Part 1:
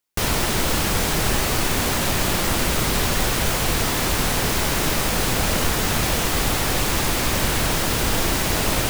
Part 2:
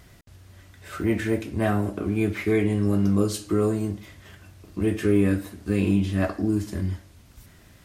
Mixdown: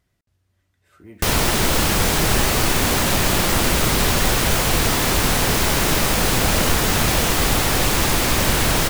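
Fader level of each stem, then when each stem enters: +3.0, −19.5 decibels; 1.05, 0.00 seconds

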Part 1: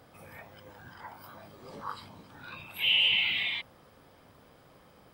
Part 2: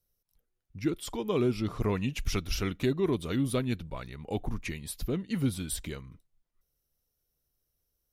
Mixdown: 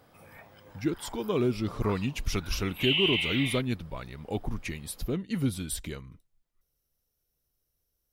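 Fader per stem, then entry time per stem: −2.5, +0.5 decibels; 0.00, 0.00 seconds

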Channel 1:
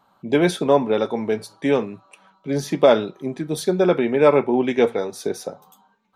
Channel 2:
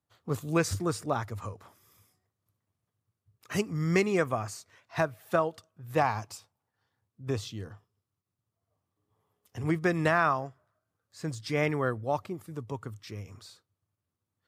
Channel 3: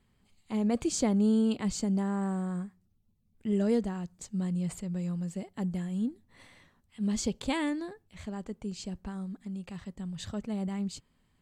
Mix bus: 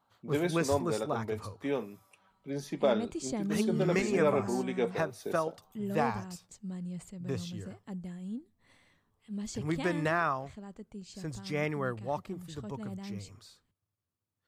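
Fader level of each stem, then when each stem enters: −13.5, −4.5, −8.0 decibels; 0.00, 0.00, 2.30 seconds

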